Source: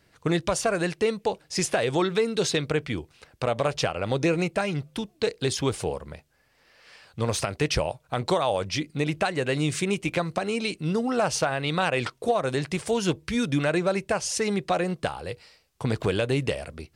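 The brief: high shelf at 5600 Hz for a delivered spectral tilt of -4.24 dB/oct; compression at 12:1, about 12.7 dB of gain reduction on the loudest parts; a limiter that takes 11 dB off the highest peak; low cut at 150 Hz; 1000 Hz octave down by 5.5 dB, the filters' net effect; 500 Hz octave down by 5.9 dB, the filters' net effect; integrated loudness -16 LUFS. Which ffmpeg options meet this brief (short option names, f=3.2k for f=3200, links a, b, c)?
-af "highpass=150,equalizer=f=500:t=o:g=-6,equalizer=f=1k:t=o:g=-5,highshelf=f=5.6k:g=-6.5,acompressor=threshold=-36dB:ratio=12,volume=27dB,alimiter=limit=-4.5dB:level=0:latency=1"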